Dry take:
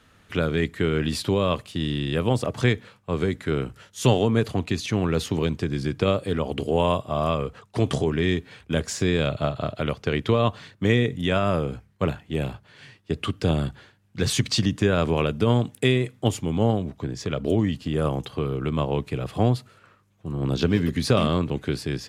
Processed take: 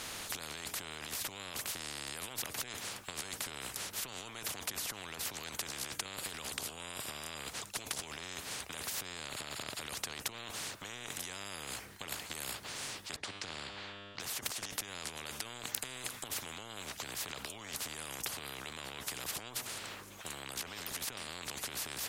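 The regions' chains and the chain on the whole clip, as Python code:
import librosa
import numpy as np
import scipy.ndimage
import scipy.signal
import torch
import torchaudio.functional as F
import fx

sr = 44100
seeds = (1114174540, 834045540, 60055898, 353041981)

y = fx.chain(x, sr, fx.lowpass(hz=3400.0, slope=12),
    fx.comb_fb(f0_hz=100.0, decay_s=1.6, harmonics='all', damping=0.0, mix_pct=70), at=(13.16, 14.2))
y = fx.high_shelf(y, sr, hz=4500.0, db=6.0)
y = fx.over_compress(y, sr, threshold_db=-31.0, ratio=-1.0)
y = fx.spectral_comp(y, sr, ratio=10.0)
y = y * 10.0 ** (1.0 / 20.0)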